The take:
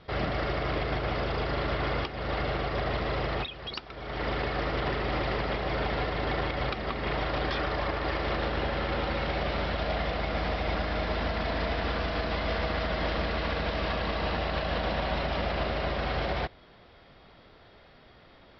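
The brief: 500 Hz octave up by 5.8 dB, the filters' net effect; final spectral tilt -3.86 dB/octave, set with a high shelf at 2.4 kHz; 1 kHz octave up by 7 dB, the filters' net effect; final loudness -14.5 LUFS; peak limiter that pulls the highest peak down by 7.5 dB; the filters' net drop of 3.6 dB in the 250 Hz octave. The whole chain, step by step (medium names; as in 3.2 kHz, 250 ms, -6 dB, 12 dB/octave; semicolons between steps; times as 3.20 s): peaking EQ 250 Hz -8.5 dB; peaking EQ 500 Hz +6.5 dB; peaking EQ 1 kHz +9 dB; treble shelf 2.4 kHz -7.5 dB; trim +15 dB; peak limiter -5.5 dBFS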